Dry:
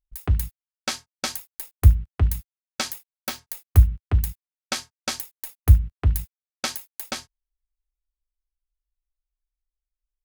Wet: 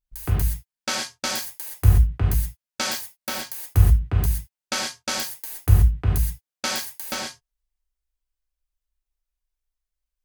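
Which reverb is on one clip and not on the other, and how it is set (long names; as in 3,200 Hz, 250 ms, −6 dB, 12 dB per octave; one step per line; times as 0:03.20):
reverb whose tail is shaped and stops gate 150 ms flat, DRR −4 dB
level −2 dB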